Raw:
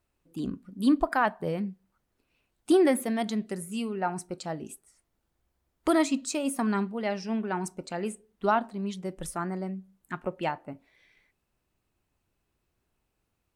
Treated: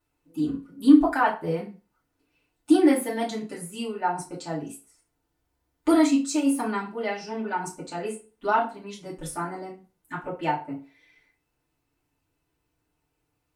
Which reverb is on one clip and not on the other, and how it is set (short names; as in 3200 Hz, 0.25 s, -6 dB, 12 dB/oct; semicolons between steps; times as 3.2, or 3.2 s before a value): FDN reverb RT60 0.33 s, low-frequency decay 0.85×, high-frequency decay 0.85×, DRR -7.5 dB; gain -6 dB